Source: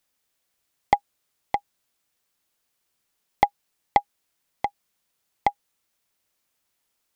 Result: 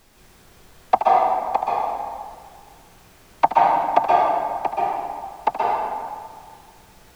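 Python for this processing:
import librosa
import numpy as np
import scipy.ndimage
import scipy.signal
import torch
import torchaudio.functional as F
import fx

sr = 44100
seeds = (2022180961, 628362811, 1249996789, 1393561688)

y = fx.high_shelf(x, sr, hz=3900.0, db=-10.5)
y = fx.notch(y, sr, hz=2000.0, q=7.0)
y = y + 10.0 ** (-11.0 / 20.0) * np.pad(y, (int(76 * sr / 1000.0), 0))[:len(y)]
y = fx.noise_vocoder(y, sr, seeds[0], bands=16)
y = scipy.signal.sosfilt(scipy.signal.butter(2, 180.0, 'highpass', fs=sr, output='sos'), y)
y = fx.peak_eq(y, sr, hz=1600.0, db=4.5, octaves=0.77)
y = fx.dmg_noise_colour(y, sr, seeds[1], colour='pink', level_db=-59.0)
y = fx.rev_plate(y, sr, seeds[2], rt60_s=1.9, hf_ratio=0.6, predelay_ms=115, drr_db=-5.0)
y = y * 10.0 ** (3.0 / 20.0)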